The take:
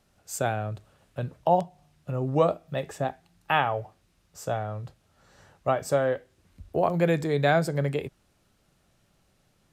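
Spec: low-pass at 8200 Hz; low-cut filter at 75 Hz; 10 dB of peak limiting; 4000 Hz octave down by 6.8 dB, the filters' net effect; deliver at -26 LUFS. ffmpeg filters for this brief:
-af "highpass=75,lowpass=8.2k,equalizer=f=4k:t=o:g=-9,volume=6dB,alimiter=limit=-14dB:level=0:latency=1"

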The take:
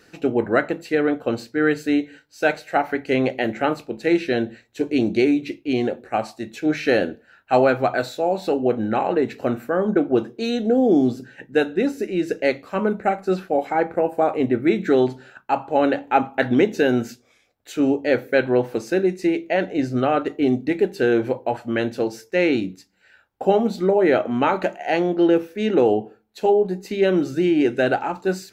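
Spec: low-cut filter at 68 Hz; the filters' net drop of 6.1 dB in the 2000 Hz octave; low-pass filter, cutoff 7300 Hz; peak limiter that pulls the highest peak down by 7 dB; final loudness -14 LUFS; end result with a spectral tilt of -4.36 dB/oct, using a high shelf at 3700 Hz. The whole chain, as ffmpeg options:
-af "highpass=68,lowpass=7.3k,equalizer=f=2k:t=o:g=-6,highshelf=f=3.7k:g=-9,volume=9.5dB,alimiter=limit=-2.5dB:level=0:latency=1"

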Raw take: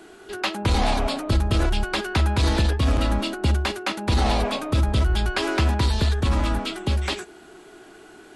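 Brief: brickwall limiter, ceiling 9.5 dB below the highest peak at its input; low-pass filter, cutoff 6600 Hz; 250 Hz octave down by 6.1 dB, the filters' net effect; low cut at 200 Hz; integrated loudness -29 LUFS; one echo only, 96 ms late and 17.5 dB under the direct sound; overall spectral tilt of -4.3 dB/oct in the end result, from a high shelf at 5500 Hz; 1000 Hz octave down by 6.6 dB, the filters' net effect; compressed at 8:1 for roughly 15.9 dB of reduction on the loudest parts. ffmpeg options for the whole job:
-af "highpass=200,lowpass=6.6k,equalizer=f=250:t=o:g=-5.5,equalizer=f=1k:t=o:g=-8.5,highshelf=f=5.5k:g=-3.5,acompressor=threshold=-42dB:ratio=8,alimiter=level_in=11.5dB:limit=-24dB:level=0:latency=1,volume=-11.5dB,aecho=1:1:96:0.133,volume=17dB"

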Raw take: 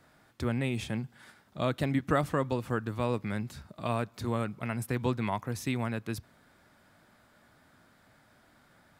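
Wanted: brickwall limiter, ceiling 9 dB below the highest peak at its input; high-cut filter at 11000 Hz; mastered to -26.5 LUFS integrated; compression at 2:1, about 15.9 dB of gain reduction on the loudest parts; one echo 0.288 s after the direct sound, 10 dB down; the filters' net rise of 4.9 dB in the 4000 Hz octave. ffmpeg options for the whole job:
-af "lowpass=11k,equalizer=f=4k:t=o:g=6,acompressor=threshold=-53dB:ratio=2,alimiter=level_in=12.5dB:limit=-24dB:level=0:latency=1,volume=-12.5dB,aecho=1:1:288:0.316,volume=23.5dB"

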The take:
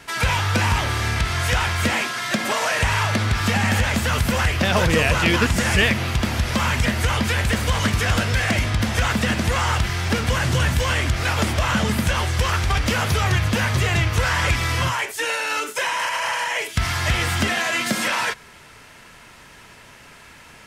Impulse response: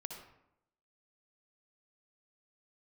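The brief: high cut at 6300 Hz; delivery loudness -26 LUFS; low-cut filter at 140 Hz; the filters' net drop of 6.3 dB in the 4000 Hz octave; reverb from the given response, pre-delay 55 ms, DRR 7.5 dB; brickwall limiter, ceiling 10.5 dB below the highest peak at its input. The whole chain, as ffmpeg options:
-filter_complex "[0:a]highpass=140,lowpass=6.3k,equalizer=f=4k:t=o:g=-8.5,alimiter=limit=-17dB:level=0:latency=1,asplit=2[a][b];[1:a]atrim=start_sample=2205,adelay=55[c];[b][c]afir=irnorm=-1:irlink=0,volume=-5dB[d];[a][d]amix=inputs=2:normalize=0,volume=-1dB"

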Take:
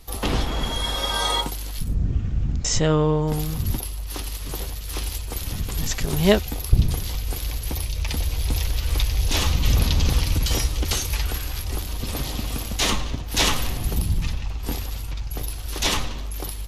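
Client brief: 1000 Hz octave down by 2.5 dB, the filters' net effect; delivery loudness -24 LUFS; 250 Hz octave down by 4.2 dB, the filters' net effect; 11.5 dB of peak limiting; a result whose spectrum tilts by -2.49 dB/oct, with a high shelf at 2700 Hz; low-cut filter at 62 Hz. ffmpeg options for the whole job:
-af "highpass=62,equalizer=f=250:t=o:g=-6.5,equalizer=f=1k:t=o:g=-4,highshelf=f=2.7k:g=8.5,volume=1.5dB,alimiter=limit=-13.5dB:level=0:latency=1"

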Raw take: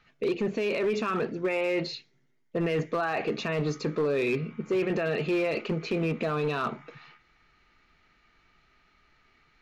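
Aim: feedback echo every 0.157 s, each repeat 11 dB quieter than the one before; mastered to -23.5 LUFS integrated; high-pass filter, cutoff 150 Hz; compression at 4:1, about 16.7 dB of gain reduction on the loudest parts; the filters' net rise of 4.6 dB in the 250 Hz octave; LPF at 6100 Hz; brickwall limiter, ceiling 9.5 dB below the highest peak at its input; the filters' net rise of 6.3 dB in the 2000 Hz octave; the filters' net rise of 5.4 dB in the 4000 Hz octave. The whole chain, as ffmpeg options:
-af "highpass=150,lowpass=6.1k,equalizer=f=250:t=o:g=8,equalizer=f=2k:t=o:g=6.5,equalizer=f=4k:t=o:g=5,acompressor=threshold=-41dB:ratio=4,alimiter=level_in=11dB:limit=-24dB:level=0:latency=1,volume=-11dB,aecho=1:1:157|314|471:0.282|0.0789|0.0221,volume=20dB"

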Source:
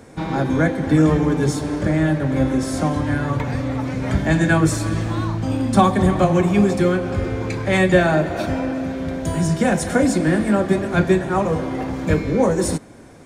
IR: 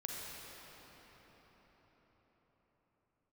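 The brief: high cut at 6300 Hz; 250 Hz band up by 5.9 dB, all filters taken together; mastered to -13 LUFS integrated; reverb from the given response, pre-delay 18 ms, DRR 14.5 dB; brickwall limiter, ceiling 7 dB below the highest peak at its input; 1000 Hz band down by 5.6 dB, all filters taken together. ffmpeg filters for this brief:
-filter_complex "[0:a]lowpass=6.3k,equalizer=f=250:t=o:g=8.5,equalizer=f=1k:t=o:g=-9,alimiter=limit=-6dB:level=0:latency=1,asplit=2[a][b];[1:a]atrim=start_sample=2205,adelay=18[c];[b][c]afir=irnorm=-1:irlink=0,volume=-15dB[d];[a][d]amix=inputs=2:normalize=0,volume=3.5dB"

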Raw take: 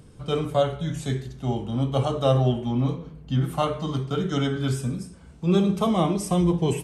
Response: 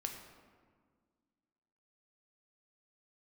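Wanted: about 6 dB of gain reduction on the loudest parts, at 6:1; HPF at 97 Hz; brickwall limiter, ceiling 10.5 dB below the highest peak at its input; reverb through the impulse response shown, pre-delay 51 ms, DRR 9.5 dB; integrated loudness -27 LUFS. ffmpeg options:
-filter_complex "[0:a]highpass=97,acompressor=threshold=-22dB:ratio=6,alimiter=limit=-23dB:level=0:latency=1,asplit=2[a][b];[1:a]atrim=start_sample=2205,adelay=51[c];[b][c]afir=irnorm=-1:irlink=0,volume=-9dB[d];[a][d]amix=inputs=2:normalize=0,volume=4.5dB"

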